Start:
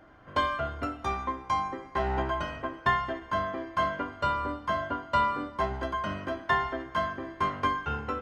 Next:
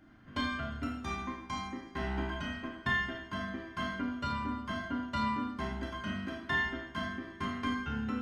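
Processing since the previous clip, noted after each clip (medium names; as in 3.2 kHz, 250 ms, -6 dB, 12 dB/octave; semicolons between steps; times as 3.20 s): ten-band graphic EQ 250 Hz +8 dB, 500 Hz -12 dB, 1 kHz -7 dB; Schroeder reverb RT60 0.52 s, combs from 25 ms, DRR 0.5 dB; trim -4 dB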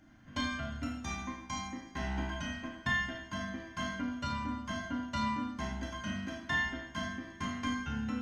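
graphic EQ with 31 bands 400 Hz -11 dB, 1.25 kHz -6 dB, 6.3 kHz +11 dB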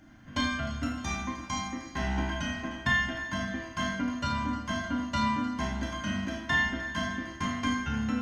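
two-band feedback delay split 990 Hz, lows 557 ms, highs 306 ms, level -14.5 dB; trim +5.5 dB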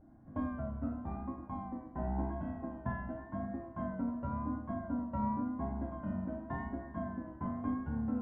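vibrato 0.92 Hz 61 cents; four-pole ladder low-pass 1 kHz, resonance 25%; trim +1 dB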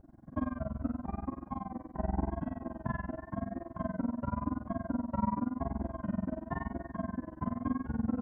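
AM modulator 21 Hz, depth 95%; trim +6.5 dB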